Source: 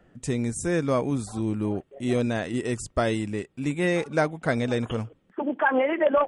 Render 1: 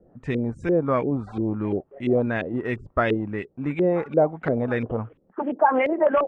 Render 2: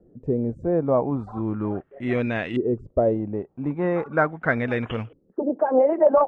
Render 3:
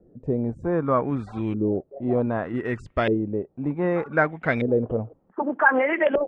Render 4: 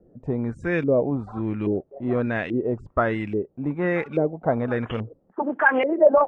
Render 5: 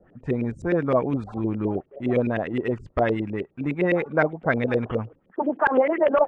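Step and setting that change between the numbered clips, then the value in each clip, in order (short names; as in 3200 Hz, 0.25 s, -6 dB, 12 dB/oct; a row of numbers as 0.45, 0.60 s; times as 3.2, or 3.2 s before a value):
LFO low-pass, rate: 2.9, 0.39, 0.65, 1.2, 9.7 Hz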